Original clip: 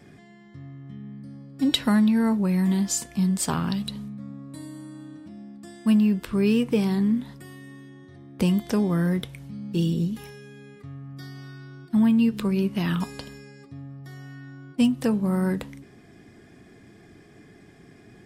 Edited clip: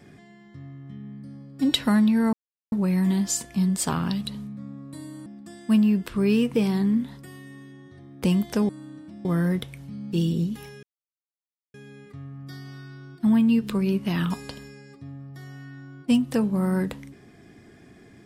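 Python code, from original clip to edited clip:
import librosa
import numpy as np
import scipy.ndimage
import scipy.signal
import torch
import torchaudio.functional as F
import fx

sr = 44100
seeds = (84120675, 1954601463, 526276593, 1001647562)

y = fx.edit(x, sr, fx.insert_silence(at_s=2.33, length_s=0.39),
    fx.move(start_s=4.87, length_s=0.56, to_s=8.86),
    fx.insert_silence(at_s=10.44, length_s=0.91), tone=tone)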